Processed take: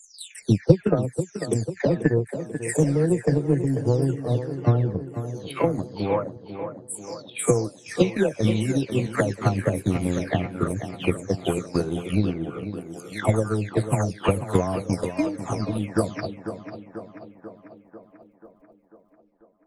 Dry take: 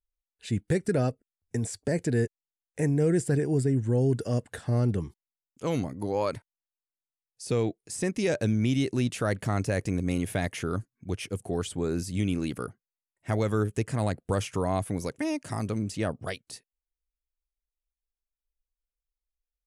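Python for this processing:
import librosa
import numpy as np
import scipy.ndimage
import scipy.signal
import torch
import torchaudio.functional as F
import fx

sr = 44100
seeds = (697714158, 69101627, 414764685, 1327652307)

y = fx.spec_delay(x, sr, highs='early', ms=519)
y = fx.transient(y, sr, attack_db=12, sustain_db=-8)
y = fx.echo_tape(y, sr, ms=491, feedback_pct=68, wet_db=-9, lp_hz=2600.0, drive_db=1.0, wow_cents=34)
y = F.gain(torch.from_numpy(y), 1.5).numpy()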